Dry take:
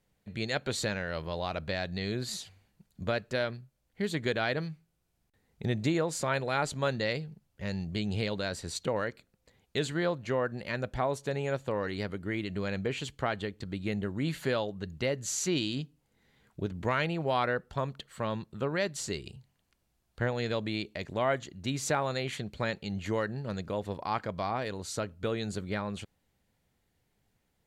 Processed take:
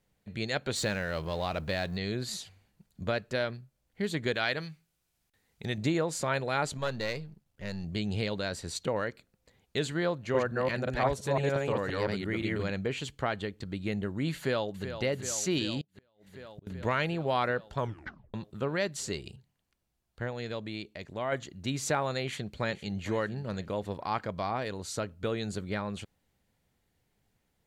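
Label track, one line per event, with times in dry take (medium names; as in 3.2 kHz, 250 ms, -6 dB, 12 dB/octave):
0.760000	1.970000	companding laws mixed up coded by mu
4.340000	5.780000	tilt shelf lows -5 dB, about 1.1 kHz
6.770000	7.840000	partial rectifier negative side -7 dB
10.170000	12.700000	chunks repeated in reverse 173 ms, level 0 dB
14.360000	14.940000	echo throw 380 ms, feedback 80%, level -10 dB
15.810000	16.670000	inverted gate shuts at -35 dBFS, range -27 dB
17.790000	17.790000	tape stop 0.55 s
19.360000	21.320000	gain -5 dB
22.240000	22.980000	echo throw 460 ms, feedback 40%, level -16.5 dB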